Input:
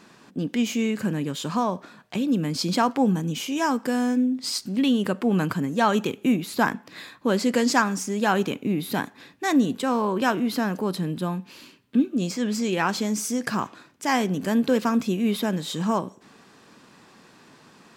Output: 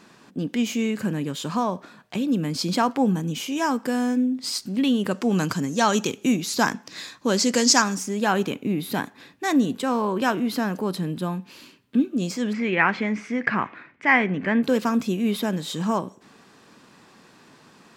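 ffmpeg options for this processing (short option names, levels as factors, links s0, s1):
-filter_complex "[0:a]asettb=1/sr,asplit=3[s0][s1][s2];[s0]atrim=end=5.114[s3];[s1]atrim=start=5.11:end=7.95,asetpts=PTS-STARTPTS,afade=t=in:d=0.004:c=qsin,afade=t=out:st=2.836:d=0.004:c=qsin,equalizer=f=6000:t=o:w=0.97:g=14[s4];[s2]atrim=start=7.946[s5];[s3][s4]acrossfade=d=0.004:c1=hsin:c2=qsin[s6];[s6][s5]acrossfade=d=0.004:c1=qsin:c2=hsin,asplit=3[s7][s8][s9];[s7]afade=t=out:st=12.52:d=0.02[s10];[s8]lowpass=f=2100:t=q:w=4.6,afade=t=in:st=12.52:d=0.02,afade=t=out:st=14.62:d=0.02[s11];[s9]afade=t=in:st=14.62:d=0.02[s12];[s10][s11][s12]amix=inputs=3:normalize=0"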